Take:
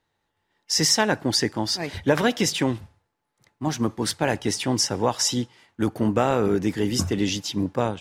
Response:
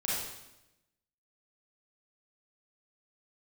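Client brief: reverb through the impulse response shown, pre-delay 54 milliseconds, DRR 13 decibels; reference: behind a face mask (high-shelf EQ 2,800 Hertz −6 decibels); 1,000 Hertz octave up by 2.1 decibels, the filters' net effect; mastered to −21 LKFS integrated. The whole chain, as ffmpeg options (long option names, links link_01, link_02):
-filter_complex "[0:a]equalizer=frequency=1000:width_type=o:gain=3.5,asplit=2[link_01][link_02];[1:a]atrim=start_sample=2205,adelay=54[link_03];[link_02][link_03]afir=irnorm=-1:irlink=0,volume=-19.5dB[link_04];[link_01][link_04]amix=inputs=2:normalize=0,highshelf=frequency=2800:gain=-6,volume=3dB"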